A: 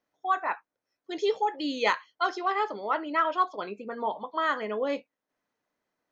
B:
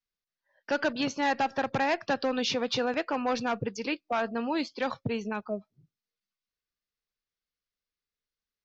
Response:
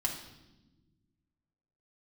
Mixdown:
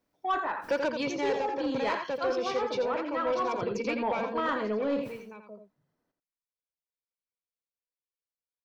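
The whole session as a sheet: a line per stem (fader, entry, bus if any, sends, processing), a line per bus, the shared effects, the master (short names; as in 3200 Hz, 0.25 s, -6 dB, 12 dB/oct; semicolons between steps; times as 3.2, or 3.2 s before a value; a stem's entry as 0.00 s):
-7.0 dB, 0.00 s, no send, echo send -8.5 dB, bell 2300 Hz -6.5 dB 0.22 oct; notch 6600 Hz, Q 12; sustainer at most 120 dB/s
1.27 s -6.5 dB -> 1.5 s -13.5 dB -> 4.37 s -13.5 dB -> 4.59 s -23.5 dB, 0.00 s, no send, echo send -7.5 dB, tilt +2 dB/oct; small resonant body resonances 510/970/2300 Hz, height 16 dB, ringing for 45 ms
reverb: off
echo: echo 85 ms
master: low shelf 410 Hz +12 dB; vocal rider 0.5 s; soft clip -20.5 dBFS, distortion -18 dB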